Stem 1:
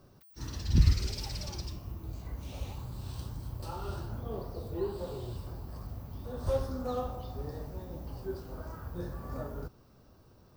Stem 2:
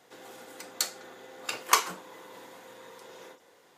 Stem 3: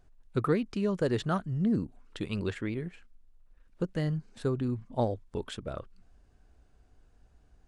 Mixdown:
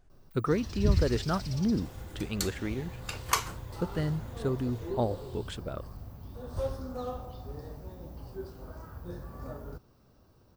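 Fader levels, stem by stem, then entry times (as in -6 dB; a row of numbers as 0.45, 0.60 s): -2.5, -5.0, -0.5 dB; 0.10, 1.60, 0.00 s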